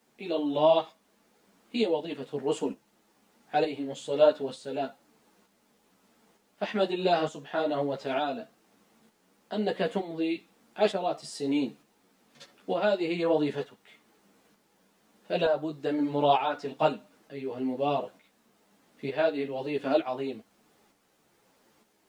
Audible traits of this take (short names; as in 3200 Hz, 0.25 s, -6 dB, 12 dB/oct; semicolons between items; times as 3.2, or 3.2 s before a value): tremolo saw up 1.1 Hz, depth 55%; a quantiser's noise floor 12-bit, dither none; a shimmering, thickened sound